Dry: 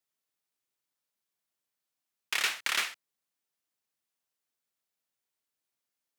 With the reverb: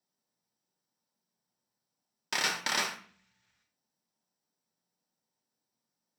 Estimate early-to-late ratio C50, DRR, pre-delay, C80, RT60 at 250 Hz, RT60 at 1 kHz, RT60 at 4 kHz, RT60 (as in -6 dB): 9.5 dB, 2.5 dB, 3 ms, 14.5 dB, 0.95 s, 0.45 s, 0.45 s, 0.50 s